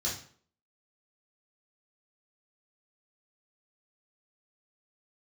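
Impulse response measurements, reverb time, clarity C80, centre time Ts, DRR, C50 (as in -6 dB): 0.50 s, 11.0 dB, 34 ms, -7.0 dB, 5.5 dB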